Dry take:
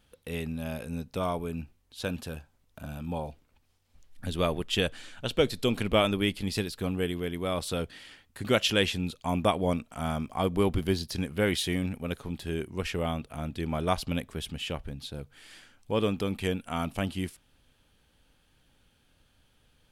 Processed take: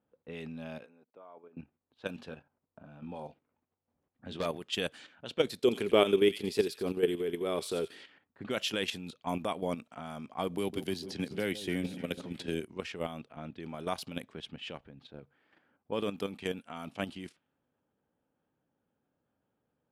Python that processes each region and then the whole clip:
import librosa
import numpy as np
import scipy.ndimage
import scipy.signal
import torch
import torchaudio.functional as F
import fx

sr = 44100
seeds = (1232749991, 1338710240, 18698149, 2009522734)

y = fx.chain(x, sr, fx.level_steps(step_db=22),
    fx.highpass(hz=410.0, slope=12), at=(0.84, 1.57))
y = fx.chain(y, sr, fx.clip_hard(threshold_db=-24.0),
    fx.doubler(ms=21.0, db=-10), at=(2.14, 4.46))
y = fx.chain(y, sr, fx.peak_eq(hz=400.0, db=14.5, octaves=0.43),
    fx.echo_wet_highpass(ms=86, feedback_pct=32, hz=2500.0, wet_db=-8), at=(5.62, 8.05))
y = fx.chain(y, sr, fx.peak_eq(hz=1100.0, db=-6.0, octaves=0.8),
    fx.echo_alternate(ms=147, hz=1000.0, feedback_pct=62, wet_db=-11.5),
    fx.band_squash(depth_pct=70), at=(10.58, 12.64))
y = scipy.signal.sosfilt(scipy.signal.butter(2, 180.0, 'highpass', fs=sr, output='sos'), y)
y = fx.env_lowpass(y, sr, base_hz=910.0, full_db=-27.0)
y = fx.level_steps(y, sr, step_db=10)
y = y * 10.0 ** (-1.5 / 20.0)